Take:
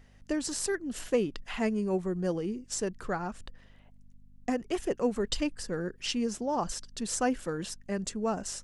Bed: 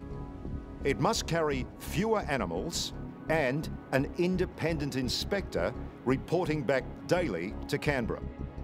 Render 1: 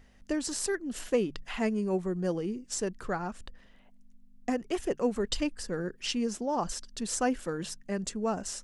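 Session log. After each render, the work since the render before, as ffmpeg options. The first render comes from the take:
-af "bandreject=f=50:t=h:w=4,bandreject=f=100:t=h:w=4,bandreject=f=150:t=h:w=4"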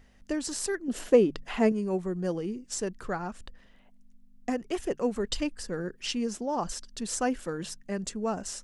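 -filter_complex "[0:a]asettb=1/sr,asplit=3[s0][s1][s2];[s0]atrim=end=0.884[s3];[s1]atrim=start=0.88:end=1.72,asetpts=PTS-STARTPTS,afade=t=in:d=0.004:c=qsin,afade=t=out:st=0.836:d=0.004:c=qsin,equalizer=f=410:w=0.52:g=8[s4];[s2]atrim=start=1.716[s5];[s3][s4]acrossfade=d=0.004:c1=hsin:c2=qsin[s6];[s6][s5]acrossfade=d=0.004:c1=qsin:c2=hsin"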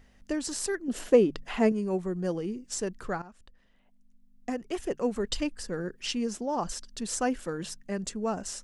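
-filter_complex "[0:a]asplit=2[s0][s1];[s0]atrim=end=3.22,asetpts=PTS-STARTPTS,afade=t=out:st=3.216:d=0.004:c=hsin:silence=0.188365[s2];[s1]atrim=start=3.22,asetpts=PTS-STARTPTS,afade=t=in:d=1.92:silence=0.188365[s3];[s2][s3]concat=n=2:v=0:a=1"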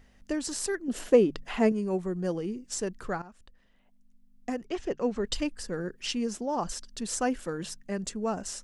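-filter_complex "[0:a]asettb=1/sr,asplit=3[s0][s1][s2];[s0]atrim=end=4.674[s3];[s1]atrim=start=4.67:end=5.24,asetpts=PTS-STARTPTS,afade=t=in:d=0.004:c=qsin,afade=t=out:st=0.566:d=0.004:c=qsin,lowpass=f=6300:w=0.5412,lowpass=f=6300:w=1.3066[s4];[s2]atrim=start=5.236[s5];[s3][s4]acrossfade=d=0.004:c1=hsin:c2=qsin[s6];[s6][s5]acrossfade=d=0.004:c1=qsin:c2=hsin"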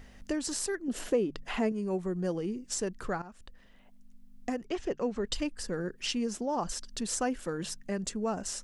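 -filter_complex "[0:a]asplit=2[s0][s1];[s1]alimiter=limit=0.112:level=0:latency=1:release=443,volume=1.26[s2];[s0][s2]amix=inputs=2:normalize=0,acompressor=threshold=0.00631:ratio=1.5"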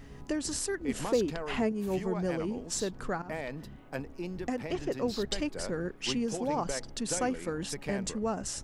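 -filter_complex "[1:a]volume=0.335[s0];[0:a][s0]amix=inputs=2:normalize=0"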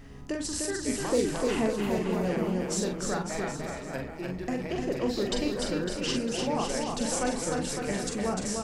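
-filter_complex "[0:a]asplit=2[s0][s1];[s1]adelay=44,volume=0.562[s2];[s0][s2]amix=inputs=2:normalize=0,asplit=2[s3][s4];[s4]aecho=0:1:300|555|771.8|956|1113:0.631|0.398|0.251|0.158|0.1[s5];[s3][s5]amix=inputs=2:normalize=0"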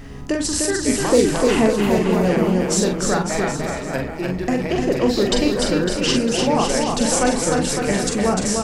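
-af "volume=3.55"

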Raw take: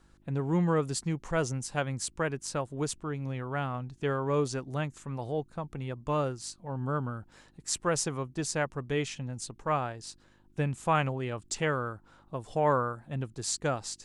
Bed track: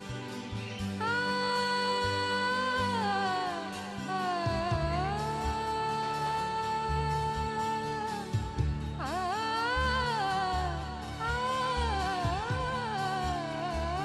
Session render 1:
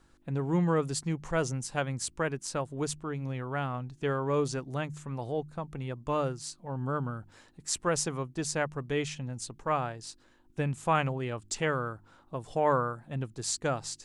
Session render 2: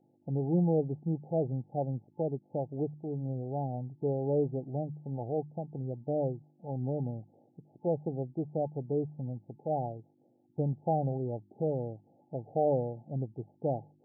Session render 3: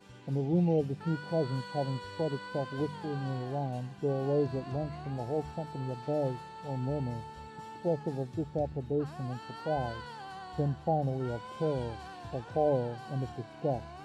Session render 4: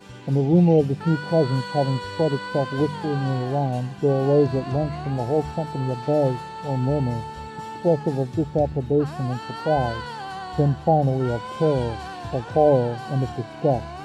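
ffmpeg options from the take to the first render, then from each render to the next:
-af "bandreject=f=50:t=h:w=4,bandreject=f=100:t=h:w=4,bandreject=f=150:t=h:w=4,bandreject=f=200:t=h:w=4"
-af "afftfilt=real='re*between(b*sr/4096,100,870)':imag='im*between(b*sr/4096,100,870)':win_size=4096:overlap=0.75"
-filter_complex "[1:a]volume=0.2[s0];[0:a][s0]amix=inputs=2:normalize=0"
-af "volume=3.55"

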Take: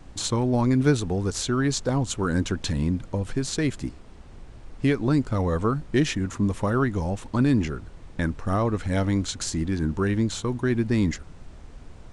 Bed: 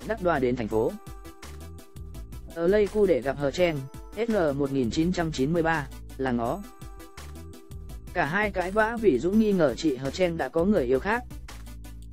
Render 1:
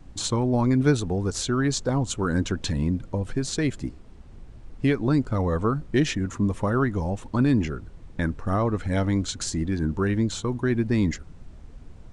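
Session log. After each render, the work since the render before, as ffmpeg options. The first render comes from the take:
-af "afftdn=nr=6:nf=-45"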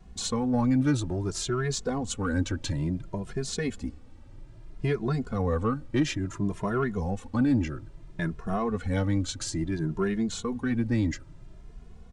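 -filter_complex "[0:a]asoftclip=type=tanh:threshold=0.224,asplit=2[s0][s1];[s1]adelay=2.4,afreqshift=0.59[s2];[s0][s2]amix=inputs=2:normalize=1"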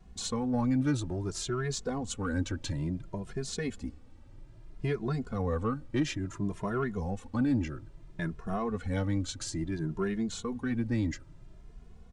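-af "volume=0.631"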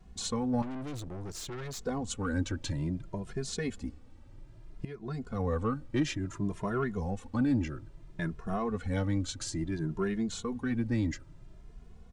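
-filter_complex "[0:a]asettb=1/sr,asplit=3[s0][s1][s2];[s0]atrim=end=0.624[s3];[s1]atrim=start=0.62:end=1.84,asetpts=PTS-STARTPTS,afade=t=in:d=0.004:c=qsin,afade=t=out:st=1.216:d=0.004:c=qsin,aeval=exprs='(tanh(70.8*val(0)+0.5)-tanh(0.5))/70.8':c=same[s4];[s2]atrim=start=1.836[s5];[s3][s4]acrossfade=d=0.004:c1=hsin:c2=qsin[s6];[s6][s5]acrossfade=d=0.004:c1=qsin:c2=hsin,asplit=2[s7][s8];[s7]atrim=end=4.85,asetpts=PTS-STARTPTS,afade=t=out:st=4.846:d=0.004:c=hsin:silence=0.141254[s9];[s8]atrim=start=4.85,asetpts=PTS-STARTPTS,afade=t=in:d=0.59:silence=0.141254[s10];[s9][s10]concat=n=2:v=0:a=1"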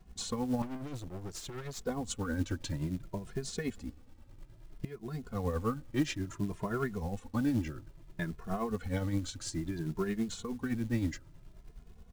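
-af "acrusher=bits=6:mode=log:mix=0:aa=0.000001,tremolo=f=9.5:d=0.54"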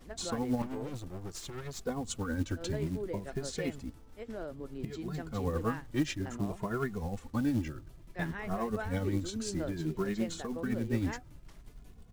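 -filter_complex "[1:a]volume=0.141[s0];[0:a][s0]amix=inputs=2:normalize=0"

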